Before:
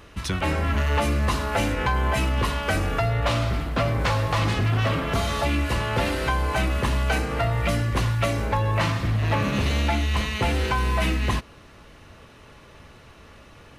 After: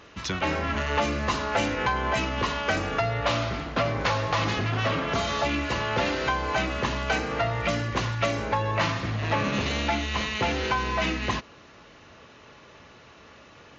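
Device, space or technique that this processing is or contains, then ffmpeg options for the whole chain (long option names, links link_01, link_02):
Bluetooth headset: -af "highpass=frequency=210:poles=1,aresample=16000,aresample=44100" -ar 16000 -c:a sbc -b:a 64k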